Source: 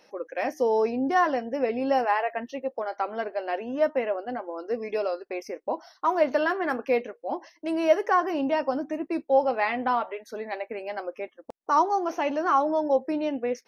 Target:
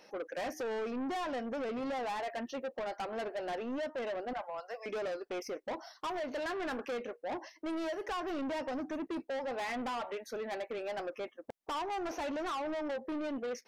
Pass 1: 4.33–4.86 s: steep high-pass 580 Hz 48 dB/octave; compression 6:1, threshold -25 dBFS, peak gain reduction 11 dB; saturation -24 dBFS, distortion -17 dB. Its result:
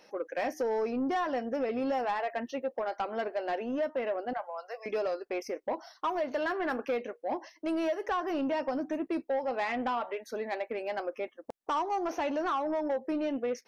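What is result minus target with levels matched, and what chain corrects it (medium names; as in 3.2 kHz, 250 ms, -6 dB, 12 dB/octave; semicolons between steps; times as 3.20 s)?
saturation: distortion -9 dB
4.33–4.86 s: steep high-pass 580 Hz 48 dB/octave; compression 6:1, threshold -25 dBFS, peak gain reduction 11 dB; saturation -34 dBFS, distortion -7 dB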